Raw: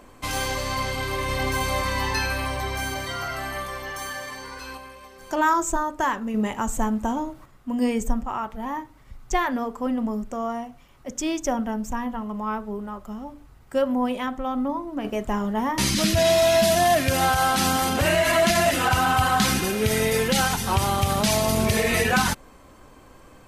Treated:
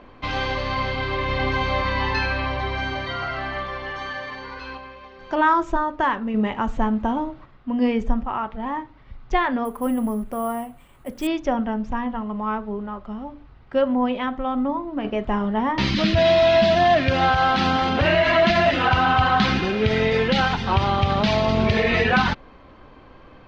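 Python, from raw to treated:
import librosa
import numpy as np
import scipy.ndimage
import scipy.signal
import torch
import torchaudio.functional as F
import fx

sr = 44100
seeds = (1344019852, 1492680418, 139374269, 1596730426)

y = scipy.signal.sosfilt(scipy.signal.cheby2(4, 50, 9200.0, 'lowpass', fs=sr, output='sos'), x)
y = fx.resample_bad(y, sr, factor=4, down='none', up='hold', at=(9.65, 11.27))
y = y * librosa.db_to_amplitude(2.5)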